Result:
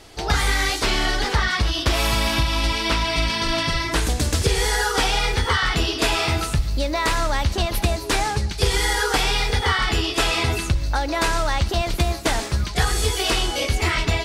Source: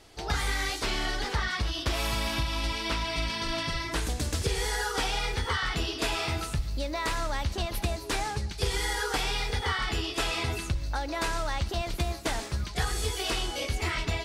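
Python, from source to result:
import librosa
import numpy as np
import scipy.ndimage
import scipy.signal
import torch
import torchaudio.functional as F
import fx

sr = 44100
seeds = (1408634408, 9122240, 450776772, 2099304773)

y = x * librosa.db_to_amplitude(9.0)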